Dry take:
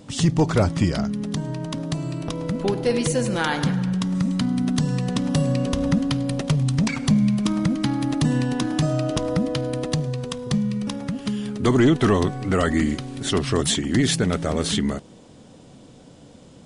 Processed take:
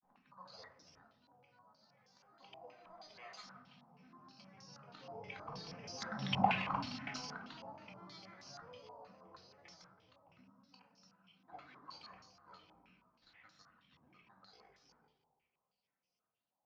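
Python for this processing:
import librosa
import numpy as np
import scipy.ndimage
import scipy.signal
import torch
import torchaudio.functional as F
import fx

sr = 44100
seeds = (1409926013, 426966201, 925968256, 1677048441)

p1 = fx.doppler_pass(x, sr, speed_mps=20, closest_m=3.2, pass_at_s=6.4)
p2 = np.diff(p1, prepend=0.0)
p3 = fx.fixed_phaser(p2, sr, hz=850.0, stages=4)
p4 = fx.granulator(p3, sr, seeds[0], grain_ms=100.0, per_s=20.0, spray_ms=100.0, spread_st=7)
p5 = (np.kron(scipy.signal.resample_poly(p4, 1, 8), np.eye(8)[0]) * 8)[:len(p4)]
p6 = fx.air_absorb(p5, sr, metres=190.0)
p7 = p6 + fx.echo_feedback(p6, sr, ms=169, feedback_pct=57, wet_db=-14.0, dry=0)
p8 = fx.room_shoebox(p7, sr, seeds[1], volume_m3=470.0, walls='furnished', distance_m=2.0)
p9 = fx.filter_held_lowpass(p8, sr, hz=6.3, low_hz=850.0, high_hz=5600.0)
y = p9 * librosa.db_to_amplitude(14.0)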